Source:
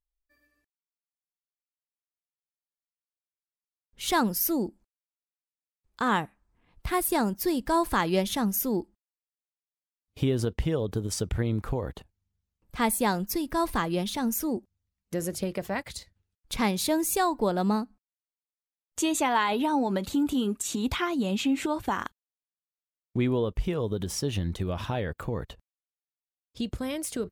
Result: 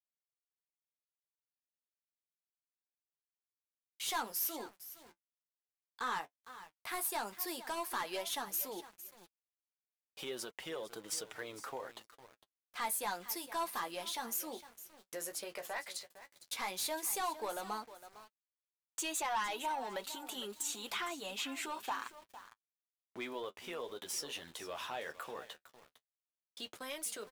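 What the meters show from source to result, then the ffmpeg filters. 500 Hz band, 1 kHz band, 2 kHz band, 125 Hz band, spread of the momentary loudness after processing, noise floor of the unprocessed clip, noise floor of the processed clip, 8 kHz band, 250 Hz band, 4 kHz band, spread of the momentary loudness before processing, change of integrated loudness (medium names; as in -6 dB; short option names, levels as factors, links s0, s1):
-14.0 dB, -10.0 dB, -8.5 dB, -31.5 dB, 16 LU, under -85 dBFS, under -85 dBFS, -6.0 dB, -22.5 dB, -6.0 dB, 10 LU, -11.5 dB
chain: -filter_complex "[0:a]agate=range=0.158:threshold=0.00251:ratio=16:detection=peak,anlmdn=0.00251,highpass=740,highshelf=f=9700:g=4,asplit=2[s0][s1];[s1]acompressor=threshold=0.00891:ratio=6,volume=0.794[s2];[s0][s2]amix=inputs=2:normalize=0,asoftclip=type=tanh:threshold=0.0596,aecho=1:1:457|914:0.188|0.0414,aeval=exprs='val(0)*gte(abs(val(0)),0.00355)':c=same,flanger=delay=5.2:depth=8.1:regen=-34:speed=0.1:shape=sinusoidal,volume=0.75"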